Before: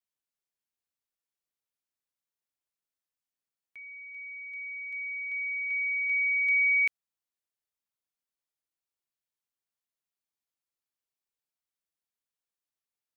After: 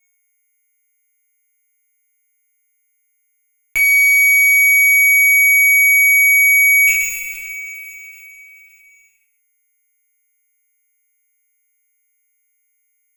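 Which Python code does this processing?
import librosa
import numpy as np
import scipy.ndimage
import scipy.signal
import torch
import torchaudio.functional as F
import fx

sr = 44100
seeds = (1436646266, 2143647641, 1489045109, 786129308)

p1 = fx.peak_eq(x, sr, hz=2600.0, db=11.5, octaves=0.22)
p2 = fx.rider(p1, sr, range_db=5, speed_s=0.5)
p3 = p1 + (p2 * 10.0 ** (-0.5 / 20.0))
p4 = np.sign(p3) * np.maximum(np.abs(p3) - 10.0 ** (-56.0 / 20.0), 0.0)
p5 = p4 + 10.0 ** (-56.0 / 20.0) * np.sin(2.0 * np.pi * 2200.0 * np.arange(len(p4)) / sr)
p6 = fx.fuzz(p5, sr, gain_db=47.0, gate_db=-56.0)
p7 = p6 + fx.echo_single(p6, sr, ms=131, db=-10.5, dry=0)
p8 = fx.rev_double_slope(p7, sr, seeds[0], early_s=0.45, late_s=2.0, knee_db=-18, drr_db=-7.0)
p9 = fx.env_flatten(p8, sr, amount_pct=50)
y = p9 * 10.0 ** (-8.0 / 20.0)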